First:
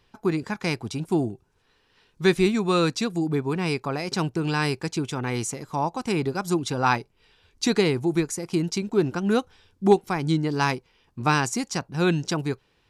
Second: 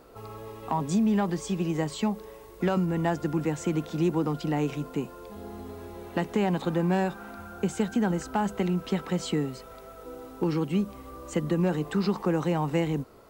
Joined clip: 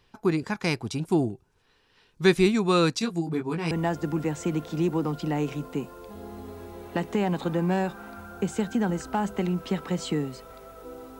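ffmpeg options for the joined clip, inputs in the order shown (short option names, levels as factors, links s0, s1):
-filter_complex "[0:a]asettb=1/sr,asplit=3[s0][s1][s2];[s0]atrim=end=2.994[s3];[s1]atrim=start=2.99:end=3.71,asetpts=PTS-STARTPTS,afade=t=in:d=0.004:c=qsin,afade=t=out:st=0.716:d=0.004:c=qsin,flanger=delay=17.5:depth=3.3:speed=0.25[s4];[s2]atrim=start=3.706[s5];[s3][s4]acrossfade=d=0.004:c1=hsin:c2=qsin[s6];[s6][s5]acrossfade=d=0.004:c1=qsin:c2=hsin,apad=whole_dur=11.19,atrim=end=11.19,atrim=end=3.712[s7];[1:a]atrim=start=2.918:end=10.4[s8];[s7][s8]acrossfade=d=0.004:c1=hsin:c2=hsin"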